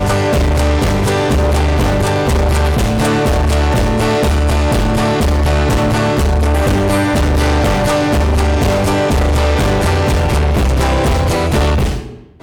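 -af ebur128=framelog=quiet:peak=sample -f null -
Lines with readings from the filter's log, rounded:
Integrated loudness:
  I:         -13.8 LUFS
  Threshold: -23.9 LUFS
Loudness range:
  LRA:         0.3 LU
  Threshold: -33.7 LUFS
  LRA low:   -13.9 LUFS
  LRA high:  -13.5 LUFS
Sample peak:
  Peak:       -9.6 dBFS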